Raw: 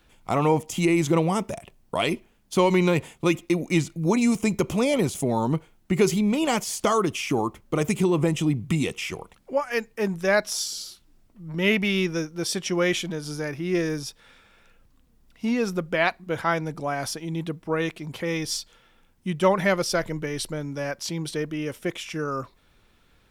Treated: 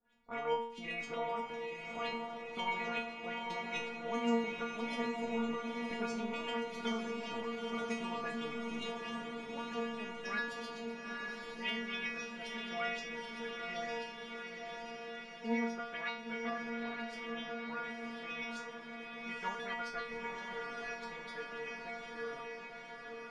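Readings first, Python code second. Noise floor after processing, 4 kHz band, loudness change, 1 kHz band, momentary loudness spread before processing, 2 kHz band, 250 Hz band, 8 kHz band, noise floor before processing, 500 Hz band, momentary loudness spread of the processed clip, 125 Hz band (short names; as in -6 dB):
-48 dBFS, -12.0 dB, -14.5 dB, -10.5 dB, 10 LU, -9.5 dB, -16.0 dB, -23.0 dB, -61 dBFS, -15.0 dB, 8 LU, -28.0 dB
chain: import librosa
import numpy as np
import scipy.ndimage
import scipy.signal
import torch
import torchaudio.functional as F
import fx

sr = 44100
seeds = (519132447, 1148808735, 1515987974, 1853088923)

y = fx.spec_clip(x, sr, under_db=16)
y = fx.filter_lfo_lowpass(y, sr, shape='saw_up', hz=7.7, low_hz=560.0, high_hz=4700.0, q=1.5)
y = fx.stiff_resonator(y, sr, f0_hz=230.0, decay_s=0.63, stiffness=0.002)
y = fx.echo_diffused(y, sr, ms=914, feedback_pct=68, wet_db=-4)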